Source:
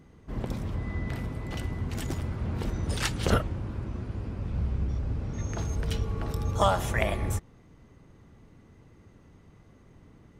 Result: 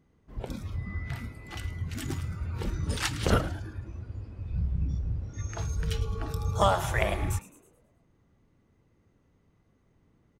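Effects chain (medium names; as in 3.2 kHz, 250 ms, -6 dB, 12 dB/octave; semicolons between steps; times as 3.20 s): frequency-shifting echo 107 ms, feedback 57%, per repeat +98 Hz, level -15 dB; spectral noise reduction 12 dB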